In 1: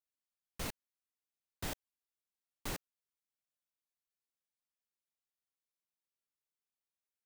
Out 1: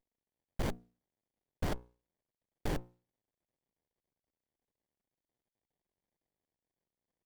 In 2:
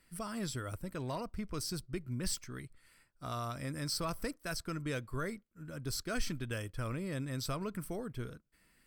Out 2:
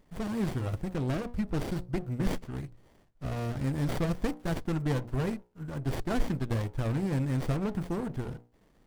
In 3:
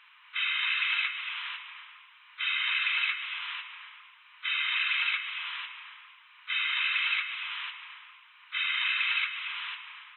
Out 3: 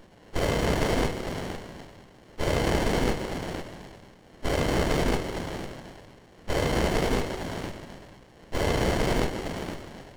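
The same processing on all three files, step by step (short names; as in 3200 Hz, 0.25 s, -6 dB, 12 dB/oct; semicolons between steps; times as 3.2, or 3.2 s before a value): notches 60/120/180/240/300/360/420/480/540 Hz; running maximum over 33 samples; gain +8.5 dB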